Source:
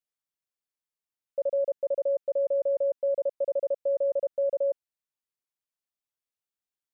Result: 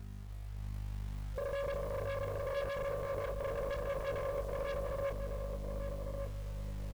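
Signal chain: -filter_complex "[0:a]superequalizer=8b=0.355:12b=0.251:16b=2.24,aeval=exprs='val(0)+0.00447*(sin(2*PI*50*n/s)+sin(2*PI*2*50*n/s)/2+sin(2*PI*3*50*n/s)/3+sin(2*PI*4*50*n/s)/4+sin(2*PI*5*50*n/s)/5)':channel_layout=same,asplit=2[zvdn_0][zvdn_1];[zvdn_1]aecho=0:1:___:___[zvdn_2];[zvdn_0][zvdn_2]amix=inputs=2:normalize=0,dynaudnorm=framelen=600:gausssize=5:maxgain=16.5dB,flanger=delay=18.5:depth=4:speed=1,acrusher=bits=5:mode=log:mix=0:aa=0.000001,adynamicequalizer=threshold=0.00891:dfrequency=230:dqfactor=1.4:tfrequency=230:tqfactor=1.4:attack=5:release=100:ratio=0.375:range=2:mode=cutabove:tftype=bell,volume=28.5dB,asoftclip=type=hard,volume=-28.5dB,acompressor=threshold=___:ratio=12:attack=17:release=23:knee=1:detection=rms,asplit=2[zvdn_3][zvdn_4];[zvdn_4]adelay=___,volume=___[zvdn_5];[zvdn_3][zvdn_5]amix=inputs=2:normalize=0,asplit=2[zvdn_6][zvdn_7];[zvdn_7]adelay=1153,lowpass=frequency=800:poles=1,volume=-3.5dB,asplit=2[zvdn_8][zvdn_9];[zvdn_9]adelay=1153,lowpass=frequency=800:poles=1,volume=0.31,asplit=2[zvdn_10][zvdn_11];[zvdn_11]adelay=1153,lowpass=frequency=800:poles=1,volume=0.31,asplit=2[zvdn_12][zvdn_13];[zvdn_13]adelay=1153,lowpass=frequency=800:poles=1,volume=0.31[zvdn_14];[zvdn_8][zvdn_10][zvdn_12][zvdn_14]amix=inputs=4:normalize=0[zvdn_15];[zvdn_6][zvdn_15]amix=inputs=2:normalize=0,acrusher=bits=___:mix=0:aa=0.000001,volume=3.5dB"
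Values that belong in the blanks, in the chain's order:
378, 0.596, -41dB, 30, -12dB, 10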